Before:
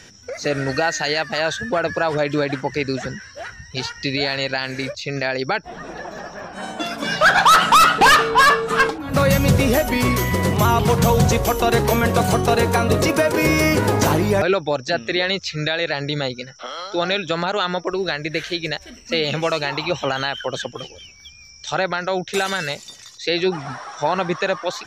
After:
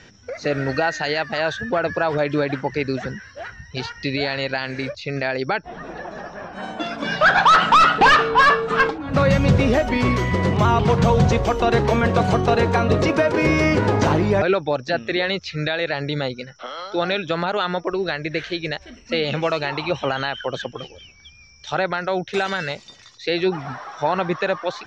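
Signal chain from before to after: distance through air 150 m

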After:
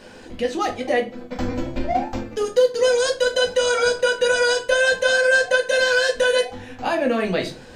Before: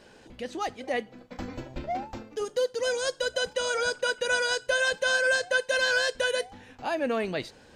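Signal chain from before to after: compression 2:1, threshold -30 dBFS, peak gain reduction 6 dB; on a send: reverberation RT60 0.35 s, pre-delay 4 ms, DRR 1 dB; on the sum: trim +8 dB

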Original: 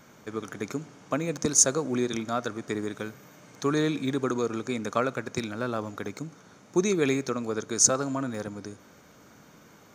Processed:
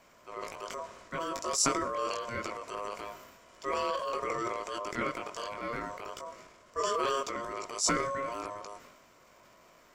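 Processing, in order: chorus 0.24 Hz, delay 18.5 ms, depth 2.1 ms; transient shaper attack -6 dB, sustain +7 dB; ring modulator 820 Hz

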